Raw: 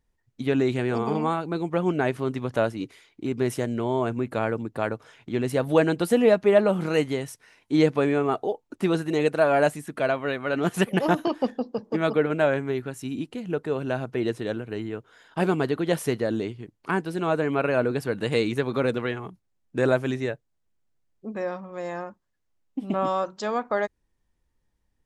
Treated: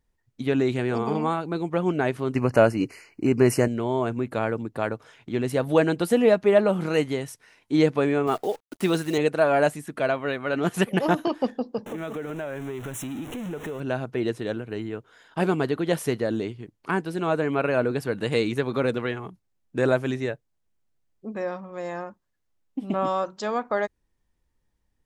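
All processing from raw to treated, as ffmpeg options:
-filter_complex "[0:a]asettb=1/sr,asplit=3[a][b][c];[a]atrim=end=2.354[d];[b]atrim=start=2.35:end=3.68,asetpts=PTS-STARTPTS,afade=t=in:d=0.004:c=qsin,afade=t=out:st=1.326:d=0.004:c=qsin,asuperstop=centerf=3500:order=20:qfactor=3.1,acontrast=77[e];[c]atrim=start=3.676[f];[d][e]acrossfade=d=0.004:c1=hsin:c2=qsin[g];[g][f]acrossfade=d=0.004:c1=qsin:c2=hsin,asettb=1/sr,asplit=3[h][i][j];[h]atrim=end=8.274[k];[i]atrim=start=8.27:end=9.18,asetpts=PTS-STARTPTS,afade=t=in:d=0.004:c=qsin,afade=t=out:st=0.906:d=0.004:c=qsin,highpass=79,highshelf=f=3k:g=8,acrusher=bits=8:dc=4:mix=0:aa=0.000001[l];[j]atrim=start=9.176[m];[k][l]acrossfade=d=0.004:c1=hsin:c2=qsin[n];[n][m]acrossfade=d=0.004:c1=qsin:c2=hsin,asettb=1/sr,asplit=3[o][p][q];[o]atrim=end=11.864[r];[p]atrim=start=11.86:end=13.8,asetpts=PTS-STARTPTS,afade=t=in:d=0.004:c=qsin,afade=t=out:st=1.936:d=0.004:c=qsin,aeval=exprs='val(0)+0.5*0.0266*sgn(val(0))':c=same,asuperstop=centerf=4700:order=4:qfactor=2.1,acompressor=threshold=-30dB:ratio=5:attack=3.2:release=140:knee=1:detection=peak[s];[q]atrim=start=13.796[t];[r][s]acrossfade=d=0.004:c1=hsin:c2=qsin[u];[u][t]acrossfade=d=0.004:c1=qsin:c2=hsin"

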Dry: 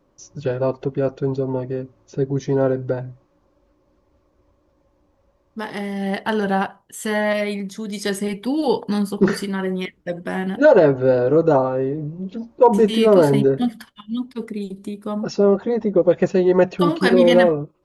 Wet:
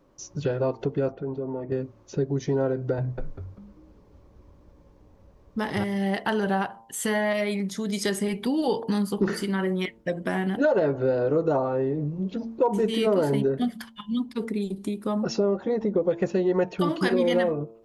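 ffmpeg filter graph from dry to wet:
-filter_complex "[0:a]asettb=1/sr,asplit=3[a][b][c];[a]atrim=end=1.124[d];[b]atrim=start=1.12:end=1.72,asetpts=PTS-STARTPTS,afade=t=in:d=0.004:c=qsin,afade=t=out:st=0.596:d=0.004:c=qsin,lowpass=2k,equalizer=f=120:t=o:w=0.26:g=-9,acompressor=threshold=-36dB:ratio=2:attack=3.2:release=140:knee=1:detection=peak[e];[c]atrim=start=1.716[f];[d][e]acrossfade=d=0.004:c1=hsin:c2=qsin[g];[g][f]acrossfade=d=0.004:c1=qsin:c2=hsin,asettb=1/sr,asplit=3[h][i][j];[h]atrim=end=2.984[k];[i]atrim=start=2.98:end=5.84,asetpts=PTS-STARTPTS,afade=t=in:d=0.004:c=qsin,afade=t=out:st=2.856:d=0.004:c=qsin,lowshelf=f=190:g=8,asplit=6[l][m][n][o][p][q];[m]adelay=196,afreqshift=-110,volume=-3.5dB[r];[n]adelay=392,afreqshift=-220,volume=-12.6dB[s];[o]adelay=588,afreqshift=-330,volume=-21.7dB[t];[p]adelay=784,afreqshift=-440,volume=-30.9dB[u];[q]adelay=980,afreqshift=-550,volume=-40dB[v];[l][r][s][t][u][v]amix=inputs=6:normalize=0,atrim=end_sample=126126[w];[j]atrim=start=5.836[x];[k][w]acrossfade=d=0.004:c1=hsin:c2=qsin[y];[y][x]acrossfade=d=0.004:c1=qsin:c2=hsin,bandreject=f=113.1:t=h:w=4,bandreject=f=226.2:t=h:w=4,bandreject=f=339.3:t=h:w=4,bandreject=f=452.4:t=h:w=4,bandreject=f=565.5:t=h:w=4,bandreject=f=678.6:t=h:w=4,bandreject=f=791.7:t=h:w=4,bandreject=f=904.8:t=h:w=4,bandreject=f=1.0179k:t=h:w=4,acompressor=threshold=-26dB:ratio=2.5,volume=1.5dB"

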